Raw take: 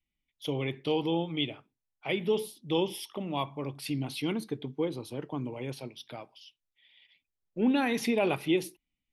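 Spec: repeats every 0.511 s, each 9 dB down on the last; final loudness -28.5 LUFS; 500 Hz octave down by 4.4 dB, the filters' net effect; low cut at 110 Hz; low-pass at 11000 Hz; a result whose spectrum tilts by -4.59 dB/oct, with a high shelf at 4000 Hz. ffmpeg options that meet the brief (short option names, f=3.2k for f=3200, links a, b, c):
-af "highpass=110,lowpass=11k,equalizer=f=500:t=o:g=-5.5,highshelf=f=4k:g=-7,aecho=1:1:511|1022|1533|2044:0.355|0.124|0.0435|0.0152,volume=5.5dB"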